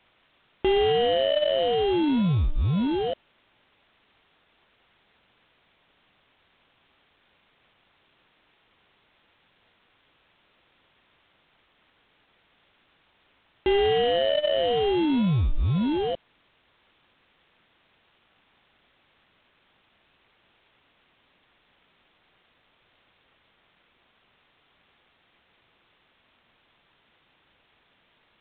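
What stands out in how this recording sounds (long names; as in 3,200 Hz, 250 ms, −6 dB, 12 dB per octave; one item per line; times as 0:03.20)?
aliases and images of a low sample rate 1,200 Hz, jitter 0%
phaser sweep stages 6, 0.075 Hz, lowest notch 800–1,800 Hz
a quantiser's noise floor 10 bits, dither triangular
IMA ADPCM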